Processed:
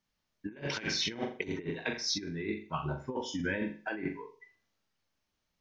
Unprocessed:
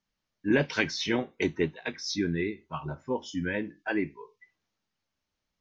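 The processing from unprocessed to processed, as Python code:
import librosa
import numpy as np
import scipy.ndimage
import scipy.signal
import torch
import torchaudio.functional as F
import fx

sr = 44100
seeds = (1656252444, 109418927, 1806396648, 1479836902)

y = fx.room_flutter(x, sr, wall_m=7.3, rt60_s=0.37)
y = fx.over_compress(y, sr, threshold_db=-31.0, ratio=-0.5)
y = y * librosa.db_to_amplitude(-3.0)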